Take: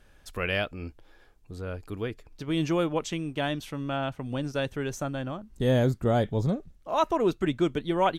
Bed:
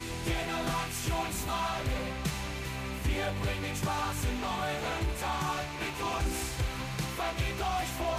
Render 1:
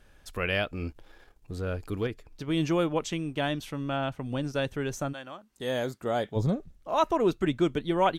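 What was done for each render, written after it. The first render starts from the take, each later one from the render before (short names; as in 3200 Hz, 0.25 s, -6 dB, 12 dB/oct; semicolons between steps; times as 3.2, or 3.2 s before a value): 0.73–2.07 sample leveller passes 1; 5.12–6.35 HPF 1300 Hz -> 470 Hz 6 dB/oct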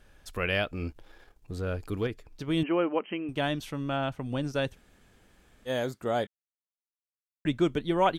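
2.63–3.29 brick-wall FIR band-pass 180–3200 Hz; 4.74–5.68 room tone, crossfade 0.06 s; 6.27–7.45 mute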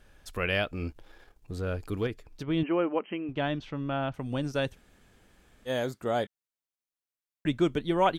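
2.43–4.14 air absorption 190 m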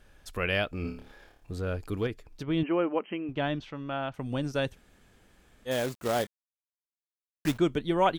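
0.82–1.53 flutter echo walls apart 4.8 m, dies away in 0.47 s; 3.64–4.19 low shelf 360 Hz -7 dB; 5.71–7.58 companded quantiser 4-bit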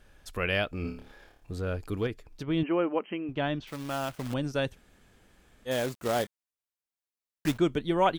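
3.67–4.34 companded quantiser 4-bit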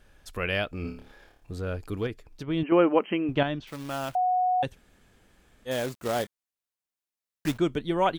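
2.72–3.43 gain +7 dB; 4.15–4.63 bleep 733 Hz -21 dBFS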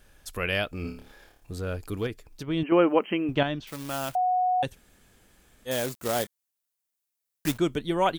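high shelf 6200 Hz +10.5 dB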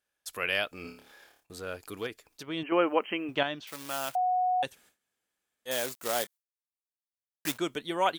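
HPF 690 Hz 6 dB/oct; gate with hold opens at -51 dBFS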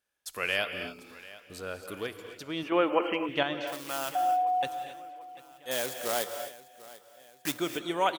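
feedback echo 0.743 s, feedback 49%, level -19 dB; non-linear reverb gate 0.29 s rising, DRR 8 dB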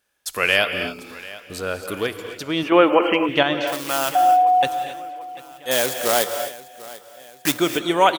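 gain +11.5 dB; limiter -3 dBFS, peak gain reduction 2.5 dB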